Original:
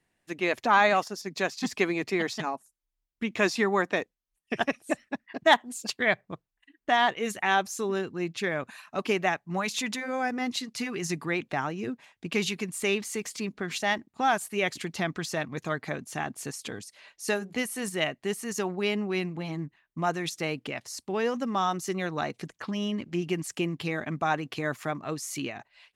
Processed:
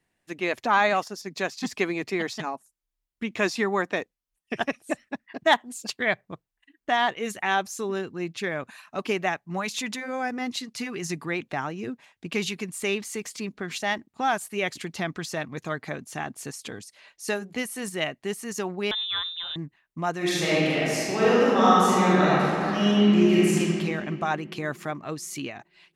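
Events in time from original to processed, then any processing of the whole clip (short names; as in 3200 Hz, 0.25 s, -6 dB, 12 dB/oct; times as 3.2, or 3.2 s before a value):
18.91–19.56 inverted band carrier 3800 Hz
20.17–23.58 reverb throw, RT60 2.7 s, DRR -9.5 dB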